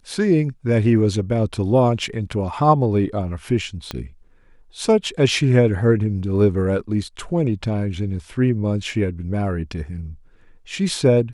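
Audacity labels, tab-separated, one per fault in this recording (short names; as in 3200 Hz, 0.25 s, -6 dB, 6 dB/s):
3.910000	3.910000	pop -12 dBFS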